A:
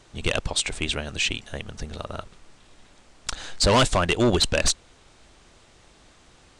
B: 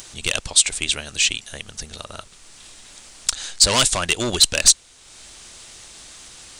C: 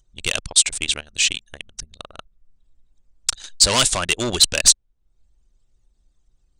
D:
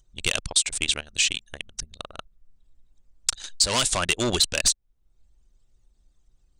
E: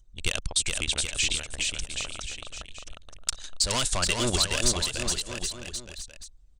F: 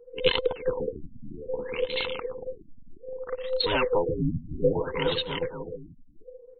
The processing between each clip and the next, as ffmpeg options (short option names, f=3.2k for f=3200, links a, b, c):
-filter_complex "[0:a]asplit=2[a][b];[b]acompressor=mode=upward:threshold=-30dB:ratio=2.5,volume=1dB[c];[a][c]amix=inputs=2:normalize=0,crystalizer=i=7:c=0,volume=-12dB"
-af "anlmdn=63.1"
-af "acompressor=threshold=-18dB:ratio=6"
-af "lowshelf=f=89:g=10.5,aecho=1:1:420|777|1080|1338|1558:0.631|0.398|0.251|0.158|0.1,volume=-4.5dB"
-af "afftfilt=real='real(if(between(b,1,1008),(2*floor((b-1)/24)+1)*24-b,b),0)':imag='imag(if(between(b,1,1008),(2*floor((b-1)/24)+1)*24-b,b),0)*if(between(b,1,1008),-1,1)':win_size=2048:overlap=0.75,afftfilt=real='re*lt(b*sr/1024,280*pow(4400/280,0.5+0.5*sin(2*PI*0.62*pts/sr)))':imag='im*lt(b*sr/1024,280*pow(4400/280,0.5+0.5*sin(2*PI*0.62*pts/sr)))':win_size=1024:overlap=0.75,volume=4dB"